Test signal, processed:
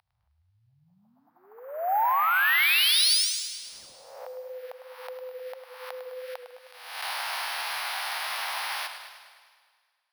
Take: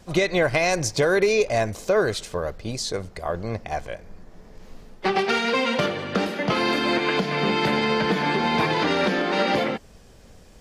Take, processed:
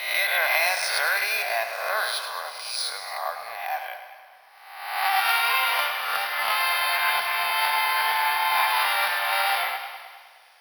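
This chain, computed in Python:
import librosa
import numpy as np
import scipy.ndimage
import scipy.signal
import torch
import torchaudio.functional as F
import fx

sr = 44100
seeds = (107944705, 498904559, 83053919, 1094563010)

p1 = fx.spec_swells(x, sr, rise_s=0.99)
p2 = scipy.signal.sosfilt(scipy.signal.ellip(3, 1.0, 40, [780.0, 5000.0], 'bandpass', fs=sr, output='sos'), p1)
p3 = p2 + fx.echo_heads(p2, sr, ms=76, heads='all three', feedback_pct=54, wet_db=-21, dry=0)
p4 = np.repeat(p3[::3], 3)[:len(p3)]
y = fx.echo_warbled(p4, sr, ms=104, feedback_pct=62, rate_hz=2.8, cents=63, wet_db=-10)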